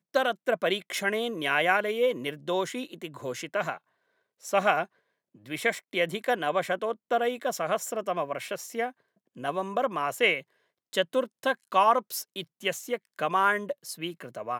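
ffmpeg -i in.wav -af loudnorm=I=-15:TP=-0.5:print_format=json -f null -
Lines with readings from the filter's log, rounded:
"input_i" : "-28.3",
"input_tp" : "-8.4",
"input_lra" : "3.2",
"input_thresh" : "-38.7",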